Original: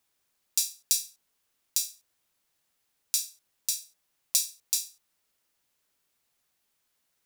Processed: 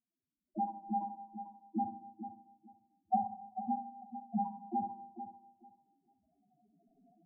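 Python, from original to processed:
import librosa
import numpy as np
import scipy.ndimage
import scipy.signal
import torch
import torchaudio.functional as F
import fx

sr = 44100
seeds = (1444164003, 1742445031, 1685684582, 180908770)

y = fx.recorder_agc(x, sr, target_db=-12.0, rise_db_per_s=14.0, max_gain_db=30)
y = fx.env_lowpass(y, sr, base_hz=620.0, full_db=-27.5)
y = fx.spec_gate(y, sr, threshold_db=-20, keep='strong')
y = fx.leveller(y, sr, passes=5)
y = scipy.signal.sosfilt(scipy.signal.cheby1(6, 6, 1000.0, 'lowpass', fs=sr, output='sos'), y)
y = fx.spec_topn(y, sr, count=1)
y = fx.echo_feedback(y, sr, ms=443, feedback_pct=19, wet_db=-10.5)
y = fx.rev_schroeder(y, sr, rt60_s=0.77, comb_ms=29, drr_db=7.5)
y = y * 10.0 ** (17.0 / 20.0)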